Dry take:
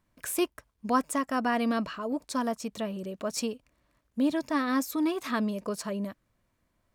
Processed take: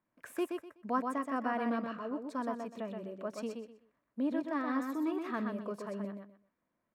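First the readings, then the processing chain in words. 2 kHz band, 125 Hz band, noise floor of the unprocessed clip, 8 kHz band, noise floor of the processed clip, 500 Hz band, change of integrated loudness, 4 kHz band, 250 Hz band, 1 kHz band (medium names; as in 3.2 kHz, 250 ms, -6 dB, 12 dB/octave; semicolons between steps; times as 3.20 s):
-7.0 dB, no reading, -75 dBFS, -20.0 dB, -84 dBFS, -5.5 dB, -6.5 dB, -15.0 dB, -6.0 dB, -5.5 dB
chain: three-band isolator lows -19 dB, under 150 Hz, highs -15 dB, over 2.4 kHz; on a send: feedback delay 125 ms, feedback 23%, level -5 dB; on the sum: trim -6.5 dB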